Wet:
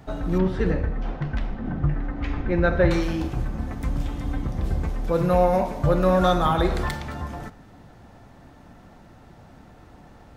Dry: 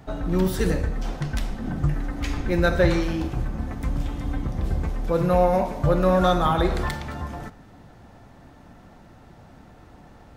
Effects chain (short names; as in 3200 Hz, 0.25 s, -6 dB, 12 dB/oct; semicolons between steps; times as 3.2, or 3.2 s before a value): 0.38–2.91 LPF 2400 Hz 12 dB/oct